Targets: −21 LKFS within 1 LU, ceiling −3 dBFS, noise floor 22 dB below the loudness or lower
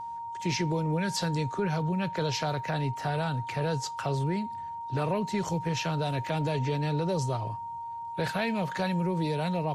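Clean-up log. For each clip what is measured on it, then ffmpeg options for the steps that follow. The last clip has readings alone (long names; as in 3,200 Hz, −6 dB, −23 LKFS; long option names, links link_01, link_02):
interfering tone 930 Hz; level of the tone −35 dBFS; integrated loudness −30.5 LKFS; sample peak −16.5 dBFS; target loudness −21.0 LKFS
→ -af "bandreject=frequency=930:width=30"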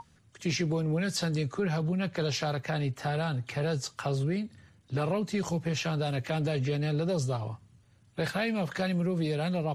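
interfering tone none found; integrated loudness −31.0 LKFS; sample peak −18.0 dBFS; target loudness −21.0 LKFS
→ -af "volume=10dB"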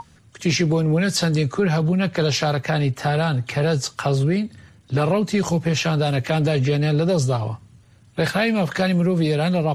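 integrated loudness −21.0 LKFS; sample peak −8.0 dBFS; background noise floor −52 dBFS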